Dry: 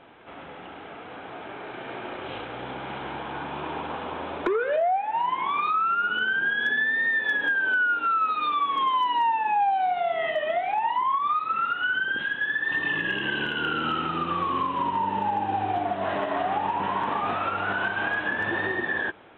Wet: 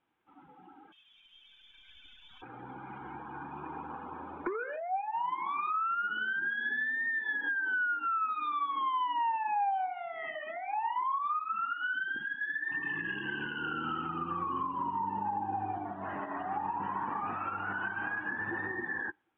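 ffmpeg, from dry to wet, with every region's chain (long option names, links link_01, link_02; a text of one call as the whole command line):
ffmpeg -i in.wav -filter_complex "[0:a]asettb=1/sr,asplit=3[link_01][link_02][link_03];[link_01]atrim=end=0.924[link_04];[link_02]atrim=start=0.92:end=2.42,asetpts=PTS-STARTPTS,afade=type=in:duration=0.004:curve=qsin,afade=type=out:start_time=1.496:duration=0.004:curve=qsin,lowpass=frequency=3300:width_type=q:width=0.5098,lowpass=frequency=3300:width_type=q:width=0.6013,lowpass=frequency=3300:width_type=q:width=0.9,lowpass=frequency=3300:width_type=q:width=2.563,afreqshift=-3900,aeval=exprs='clip(val(0),-1,0.0106)':channel_layout=same[link_05];[link_03]atrim=start=2.416[link_06];[link_04][link_05]acrossfade=duration=0.004:curve1=hsin:curve2=qsin[link_07];[link_07][link_06]acrossfade=duration=0.004:curve1=qsin:curve2=hsin,superequalizer=7b=0.562:8b=0.398,acrossover=split=2800[link_08][link_09];[link_09]acompressor=threshold=-51dB:ratio=4:attack=1:release=60[link_10];[link_08][link_10]amix=inputs=2:normalize=0,afftdn=noise_reduction=20:noise_floor=-36,volume=-7.5dB" out.wav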